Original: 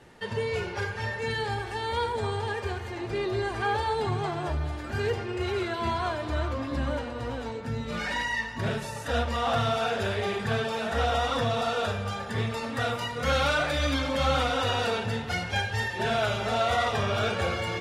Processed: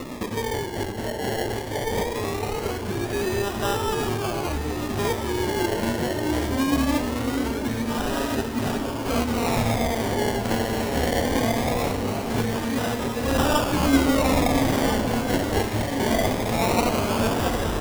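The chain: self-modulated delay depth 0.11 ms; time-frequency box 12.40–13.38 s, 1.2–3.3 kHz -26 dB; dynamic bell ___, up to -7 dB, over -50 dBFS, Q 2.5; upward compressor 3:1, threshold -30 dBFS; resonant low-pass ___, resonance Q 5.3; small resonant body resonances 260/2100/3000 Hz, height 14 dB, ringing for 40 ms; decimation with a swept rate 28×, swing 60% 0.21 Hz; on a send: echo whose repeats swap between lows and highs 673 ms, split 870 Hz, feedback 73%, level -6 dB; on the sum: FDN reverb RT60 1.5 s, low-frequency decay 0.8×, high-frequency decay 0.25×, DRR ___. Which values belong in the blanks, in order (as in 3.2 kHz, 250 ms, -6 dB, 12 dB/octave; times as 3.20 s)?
160 Hz, 4.6 kHz, 19 dB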